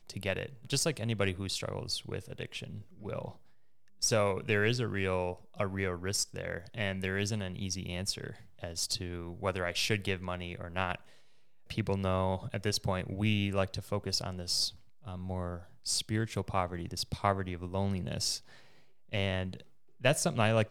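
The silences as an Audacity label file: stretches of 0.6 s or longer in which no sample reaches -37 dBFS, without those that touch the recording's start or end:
3.300000	4.020000	silence
10.950000	11.700000	silence
18.370000	19.130000	silence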